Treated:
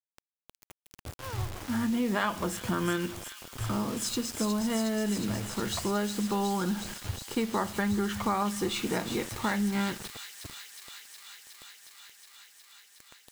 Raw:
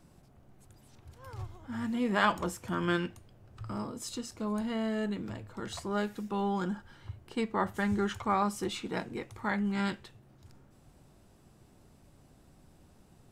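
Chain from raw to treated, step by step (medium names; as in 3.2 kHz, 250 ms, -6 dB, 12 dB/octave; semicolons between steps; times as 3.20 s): on a send at -19.5 dB: reverberation RT60 0.75 s, pre-delay 5 ms; on the sum: bit crusher 8-bit; compression 5:1, threshold -34 dBFS, peak gain reduction 12 dB; feedback echo behind a high-pass 364 ms, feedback 83%, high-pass 3.4 kHz, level -4.5 dB; trim +8 dB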